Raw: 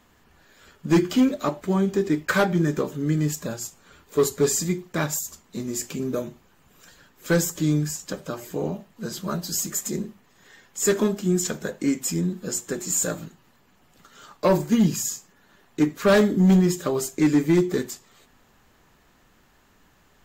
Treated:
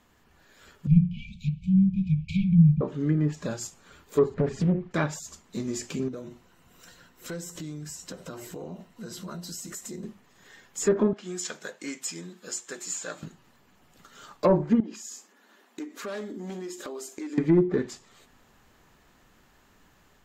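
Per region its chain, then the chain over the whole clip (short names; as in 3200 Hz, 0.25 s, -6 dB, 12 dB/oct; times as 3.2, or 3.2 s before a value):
0.87–2.81 brick-wall FIR band-stop 200–2200 Hz + tone controls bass +12 dB, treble -14 dB + notches 60/120/180/240/300/360/420/480 Hz
4.34–4.91 compressor, threshold -22 dBFS + tone controls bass +10 dB, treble -13 dB + Doppler distortion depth 0.72 ms
6.08–10.03 ripple EQ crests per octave 2, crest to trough 6 dB + compressor 4:1, threshold -35 dBFS
11.13–13.23 HPF 1300 Hz 6 dB/oct + high shelf 9200 Hz -6.5 dB
14.8–17.38 brick-wall FIR high-pass 200 Hz + compressor 4:1, threshold -35 dBFS
whole clip: treble ducked by the level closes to 1000 Hz, closed at -16.5 dBFS; AGC gain up to 3 dB; gain -4 dB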